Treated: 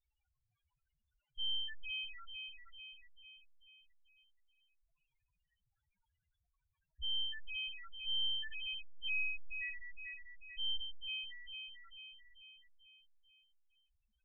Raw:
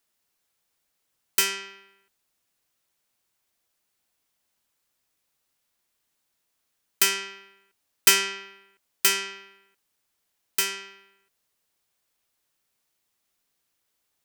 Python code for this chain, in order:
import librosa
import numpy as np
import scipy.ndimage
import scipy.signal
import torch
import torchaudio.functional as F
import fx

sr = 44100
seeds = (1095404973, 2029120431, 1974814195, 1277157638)

p1 = fx.dynamic_eq(x, sr, hz=630.0, q=4.0, threshold_db=-55.0, ratio=4.0, max_db=-4)
p2 = fx.over_compress(p1, sr, threshold_db=-29.0, ratio=-0.5)
p3 = p1 + (p2 * 10.0 ** (1.0 / 20.0))
p4 = np.clip(10.0 ** (22.0 / 20.0) * p3, -1.0, 1.0) / 10.0 ** (22.0 / 20.0)
p5 = p4 + fx.echo_alternate(p4, sr, ms=221, hz=1900.0, feedback_pct=73, wet_db=-5.5, dry=0)
p6 = fx.lpc_vocoder(p5, sr, seeds[0], excitation='pitch_kept', order=10)
p7 = fx.spec_topn(p6, sr, count=2)
y = p7 * 10.0 ** (1.0 / 20.0)